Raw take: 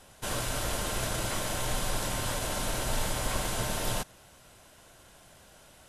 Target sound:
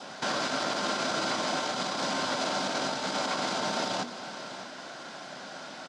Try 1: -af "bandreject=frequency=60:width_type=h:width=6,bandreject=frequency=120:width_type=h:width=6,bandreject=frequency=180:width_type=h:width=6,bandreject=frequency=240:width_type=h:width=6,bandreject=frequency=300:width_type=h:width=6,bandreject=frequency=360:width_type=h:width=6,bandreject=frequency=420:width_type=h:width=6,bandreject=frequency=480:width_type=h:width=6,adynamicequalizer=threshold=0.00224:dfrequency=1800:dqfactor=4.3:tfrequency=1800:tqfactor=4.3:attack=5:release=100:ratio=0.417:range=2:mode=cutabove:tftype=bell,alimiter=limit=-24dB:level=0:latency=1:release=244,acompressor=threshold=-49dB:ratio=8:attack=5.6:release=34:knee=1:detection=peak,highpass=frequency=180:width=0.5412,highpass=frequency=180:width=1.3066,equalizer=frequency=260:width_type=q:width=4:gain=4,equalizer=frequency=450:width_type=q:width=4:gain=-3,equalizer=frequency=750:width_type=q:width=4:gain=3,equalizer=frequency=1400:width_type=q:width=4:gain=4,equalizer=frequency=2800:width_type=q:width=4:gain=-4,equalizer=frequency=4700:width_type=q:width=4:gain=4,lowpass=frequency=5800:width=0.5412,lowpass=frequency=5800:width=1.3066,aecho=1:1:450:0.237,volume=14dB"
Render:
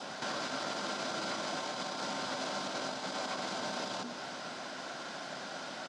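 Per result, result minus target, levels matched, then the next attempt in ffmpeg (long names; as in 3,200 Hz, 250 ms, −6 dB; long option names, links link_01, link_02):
downward compressor: peak gain reduction +7 dB; echo 152 ms early
-af "bandreject=frequency=60:width_type=h:width=6,bandreject=frequency=120:width_type=h:width=6,bandreject=frequency=180:width_type=h:width=6,bandreject=frequency=240:width_type=h:width=6,bandreject=frequency=300:width_type=h:width=6,bandreject=frequency=360:width_type=h:width=6,bandreject=frequency=420:width_type=h:width=6,bandreject=frequency=480:width_type=h:width=6,adynamicequalizer=threshold=0.00224:dfrequency=1800:dqfactor=4.3:tfrequency=1800:tqfactor=4.3:attack=5:release=100:ratio=0.417:range=2:mode=cutabove:tftype=bell,alimiter=limit=-24dB:level=0:latency=1:release=244,acompressor=threshold=-41dB:ratio=8:attack=5.6:release=34:knee=1:detection=peak,highpass=frequency=180:width=0.5412,highpass=frequency=180:width=1.3066,equalizer=frequency=260:width_type=q:width=4:gain=4,equalizer=frequency=450:width_type=q:width=4:gain=-3,equalizer=frequency=750:width_type=q:width=4:gain=3,equalizer=frequency=1400:width_type=q:width=4:gain=4,equalizer=frequency=2800:width_type=q:width=4:gain=-4,equalizer=frequency=4700:width_type=q:width=4:gain=4,lowpass=frequency=5800:width=0.5412,lowpass=frequency=5800:width=1.3066,aecho=1:1:450:0.237,volume=14dB"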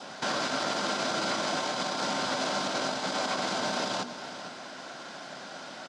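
echo 152 ms early
-af "bandreject=frequency=60:width_type=h:width=6,bandreject=frequency=120:width_type=h:width=6,bandreject=frequency=180:width_type=h:width=6,bandreject=frequency=240:width_type=h:width=6,bandreject=frequency=300:width_type=h:width=6,bandreject=frequency=360:width_type=h:width=6,bandreject=frequency=420:width_type=h:width=6,bandreject=frequency=480:width_type=h:width=6,adynamicequalizer=threshold=0.00224:dfrequency=1800:dqfactor=4.3:tfrequency=1800:tqfactor=4.3:attack=5:release=100:ratio=0.417:range=2:mode=cutabove:tftype=bell,alimiter=limit=-24dB:level=0:latency=1:release=244,acompressor=threshold=-41dB:ratio=8:attack=5.6:release=34:knee=1:detection=peak,highpass=frequency=180:width=0.5412,highpass=frequency=180:width=1.3066,equalizer=frequency=260:width_type=q:width=4:gain=4,equalizer=frequency=450:width_type=q:width=4:gain=-3,equalizer=frequency=750:width_type=q:width=4:gain=3,equalizer=frequency=1400:width_type=q:width=4:gain=4,equalizer=frequency=2800:width_type=q:width=4:gain=-4,equalizer=frequency=4700:width_type=q:width=4:gain=4,lowpass=frequency=5800:width=0.5412,lowpass=frequency=5800:width=1.3066,aecho=1:1:602:0.237,volume=14dB"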